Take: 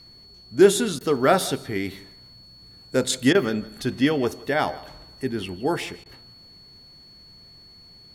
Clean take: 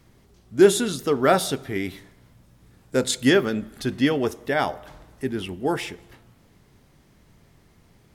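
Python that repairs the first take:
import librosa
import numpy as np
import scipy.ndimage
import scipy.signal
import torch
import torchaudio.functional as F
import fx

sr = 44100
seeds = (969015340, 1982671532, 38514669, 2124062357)

y = fx.notch(x, sr, hz=4400.0, q=30.0)
y = fx.fix_interpolate(y, sr, at_s=(0.99, 3.33, 6.04), length_ms=16.0)
y = fx.fix_echo_inverse(y, sr, delay_ms=161, level_db=-20.5)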